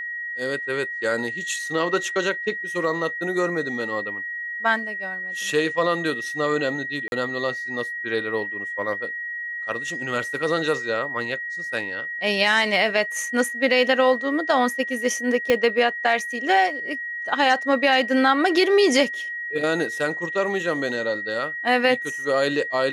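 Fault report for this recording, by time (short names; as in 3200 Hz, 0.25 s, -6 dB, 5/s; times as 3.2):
tone 1900 Hz -28 dBFS
7.08–7.12 gap 41 ms
15.5 pop -7 dBFS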